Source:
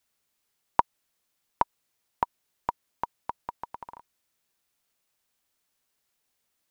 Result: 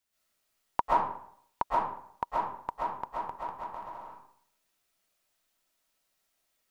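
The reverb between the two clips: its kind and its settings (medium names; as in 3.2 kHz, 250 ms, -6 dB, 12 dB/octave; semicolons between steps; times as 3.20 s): algorithmic reverb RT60 0.63 s, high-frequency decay 0.7×, pre-delay 90 ms, DRR -7.5 dB; trim -6.5 dB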